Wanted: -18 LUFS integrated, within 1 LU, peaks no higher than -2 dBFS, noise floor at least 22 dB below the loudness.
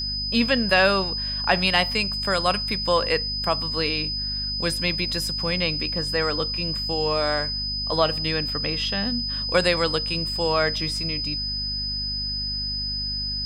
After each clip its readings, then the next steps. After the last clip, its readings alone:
hum 50 Hz; highest harmonic 250 Hz; hum level -32 dBFS; steady tone 5 kHz; tone level -26 dBFS; loudness -23.0 LUFS; peak level -4.5 dBFS; loudness target -18.0 LUFS
-> hum notches 50/100/150/200/250 Hz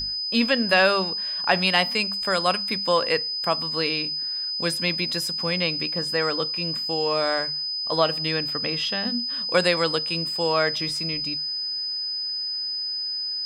hum not found; steady tone 5 kHz; tone level -26 dBFS
-> band-stop 5 kHz, Q 30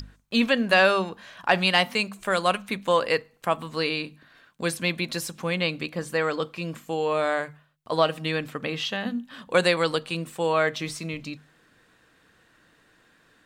steady tone not found; loudness -25.5 LUFS; peak level -5.5 dBFS; loudness target -18.0 LUFS
-> trim +7.5 dB; peak limiter -2 dBFS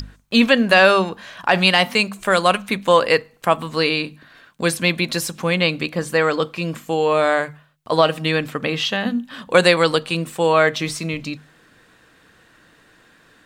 loudness -18.5 LUFS; peak level -2.0 dBFS; noise floor -54 dBFS

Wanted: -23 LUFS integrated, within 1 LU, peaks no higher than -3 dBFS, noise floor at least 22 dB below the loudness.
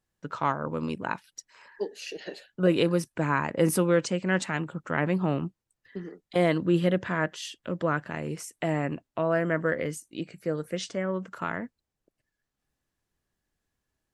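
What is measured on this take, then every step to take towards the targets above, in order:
loudness -28.5 LUFS; peak level -9.5 dBFS; loudness target -23.0 LUFS
-> trim +5.5 dB

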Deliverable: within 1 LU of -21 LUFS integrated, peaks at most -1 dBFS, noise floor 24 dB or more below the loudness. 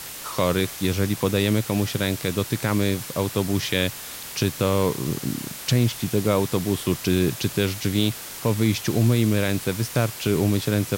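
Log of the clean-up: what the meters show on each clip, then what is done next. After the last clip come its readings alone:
noise floor -37 dBFS; noise floor target -48 dBFS; loudness -23.5 LUFS; peak level -8.5 dBFS; loudness target -21.0 LUFS
-> noise reduction 11 dB, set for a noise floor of -37 dBFS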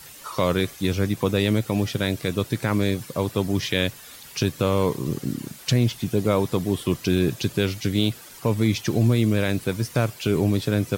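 noise floor -44 dBFS; noise floor target -48 dBFS
-> noise reduction 6 dB, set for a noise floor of -44 dBFS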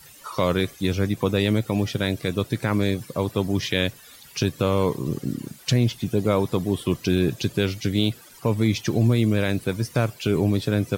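noise floor -48 dBFS; loudness -24.0 LUFS; peak level -9.0 dBFS; loudness target -21.0 LUFS
-> trim +3 dB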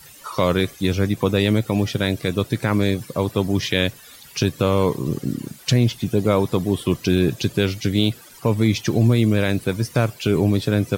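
loudness -21.0 LUFS; peak level -6.0 dBFS; noise floor -45 dBFS

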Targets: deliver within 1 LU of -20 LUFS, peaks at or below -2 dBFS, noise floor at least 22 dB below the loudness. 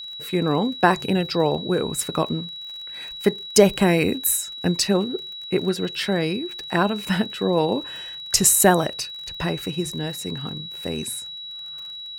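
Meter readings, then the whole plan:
tick rate 34 per s; steady tone 3.9 kHz; tone level -33 dBFS; loudness -22.0 LUFS; peak level -1.0 dBFS; loudness target -20.0 LUFS
-> de-click; band-stop 3.9 kHz, Q 30; trim +2 dB; peak limiter -2 dBFS

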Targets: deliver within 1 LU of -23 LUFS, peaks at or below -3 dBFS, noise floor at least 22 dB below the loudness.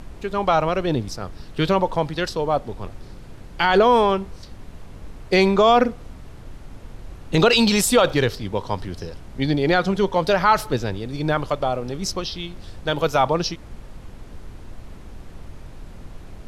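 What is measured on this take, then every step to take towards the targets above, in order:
noise floor -41 dBFS; noise floor target -43 dBFS; loudness -20.5 LUFS; peak level -5.0 dBFS; loudness target -23.0 LUFS
-> noise print and reduce 6 dB; trim -2.5 dB

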